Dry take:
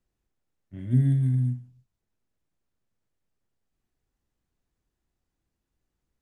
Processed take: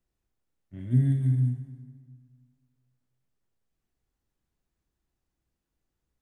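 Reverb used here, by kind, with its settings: plate-style reverb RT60 1.9 s, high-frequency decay 0.65×, DRR 8 dB; gain -2 dB

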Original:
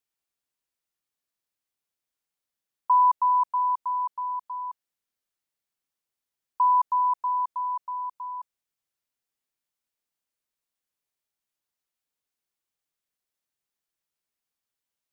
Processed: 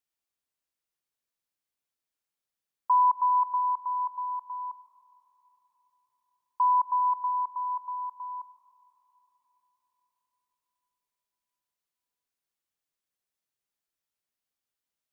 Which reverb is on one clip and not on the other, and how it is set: digital reverb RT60 4.8 s, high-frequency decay 0.4×, pre-delay 90 ms, DRR 13 dB; gain -2.5 dB

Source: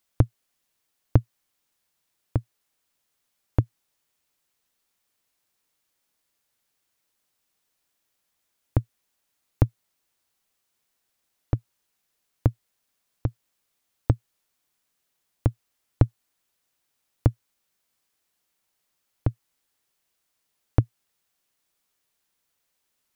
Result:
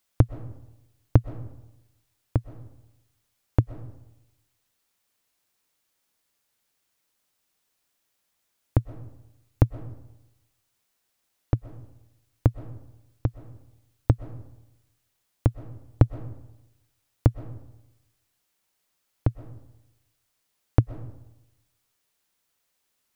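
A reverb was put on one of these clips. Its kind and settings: digital reverb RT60 0.94 s, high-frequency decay 0.55×, pre-delay 85 ms, DRR 14 dB; gain +1 dB

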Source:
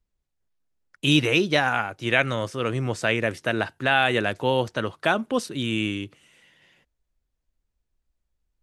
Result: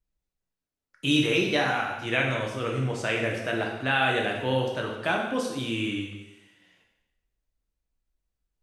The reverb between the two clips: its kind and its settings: plate-style reverb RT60 0.96 s, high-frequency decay 1×, DRR -1 dB; gain -6.5 dB

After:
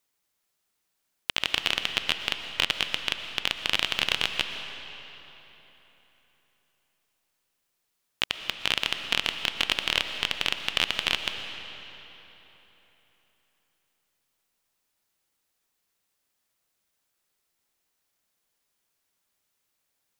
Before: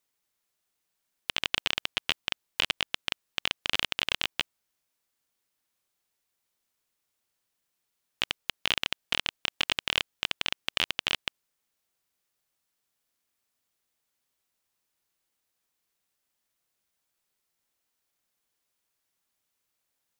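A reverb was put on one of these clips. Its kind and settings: digital reverb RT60 3.7 s, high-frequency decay 0.8×, pre-delay 80 ms, DRR 7 dB; gain +2.5 dB

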